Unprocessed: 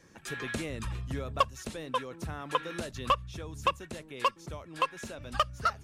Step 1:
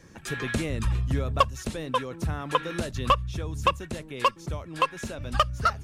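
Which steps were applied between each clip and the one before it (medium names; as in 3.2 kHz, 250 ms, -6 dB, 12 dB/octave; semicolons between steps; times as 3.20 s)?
bass shelf 180 Hz +7.5 dB; trim +4.5 dB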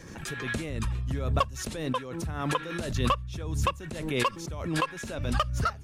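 swell ahead of each attack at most 45 dB/s; trim -5.5 dB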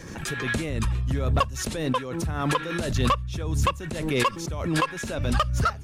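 saturation -19 dBFS, distortion -17 dB; trim +5.5 dB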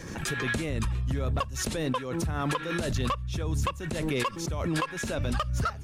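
compression, threshold -25 dBFS, peak gain reduction 7.5 dB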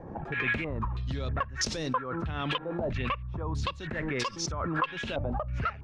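step-sequenced low-pass 3.1 Hz 770–5500 Hz; trim -4 dB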